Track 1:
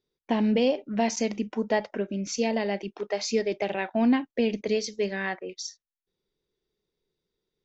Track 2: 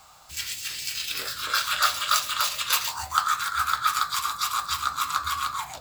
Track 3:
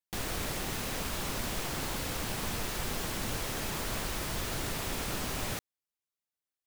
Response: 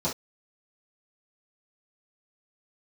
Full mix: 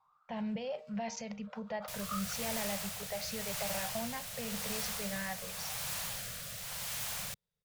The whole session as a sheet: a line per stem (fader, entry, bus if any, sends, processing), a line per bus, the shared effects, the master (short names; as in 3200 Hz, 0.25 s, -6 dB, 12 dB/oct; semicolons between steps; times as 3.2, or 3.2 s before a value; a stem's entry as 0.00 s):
-5.5 dB, 0.00 s, bus A, no send, high shelf 6500 Hz -9.5 dB; de-hum 154.7 Hz, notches 9
-8.0 dB, 0.00 s, muted 2.33–5.13, bus A, no send, wah 0.51 Hz 610–1500 Hz, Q 11
+2.5 dB, 1.75 s, no bus, no send, wrapped overs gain 34 dB; rotary speaker horn 0.9 Hz
bus A: 0.0 dB, limiter -27.5 dBFS, peak gain reduction 9 dB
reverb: off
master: Chebyshev band-stop 180–560 Hz, order 2; bell 120 Hz +5 dB 2.1 oct